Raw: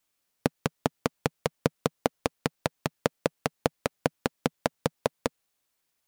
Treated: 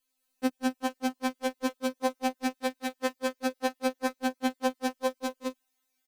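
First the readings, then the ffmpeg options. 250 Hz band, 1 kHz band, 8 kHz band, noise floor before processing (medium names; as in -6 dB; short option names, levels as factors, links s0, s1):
+2.5 dB, +1.0 dB, -1.0 dB, -78 dBFS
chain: -filter_complex "[0:a]asplit=2[s0][s1];[s1]aecho=0:1:177|209|240:0.119|0.708|0.126[s2];[s0][s2]amix=inputs=2:normalize=0,afftfilt=real='re*3.46*eq(mod(b,12),0)':imag='im*3.46*eq(mod(b,12),0)':win_size=2048:overlap=0.75"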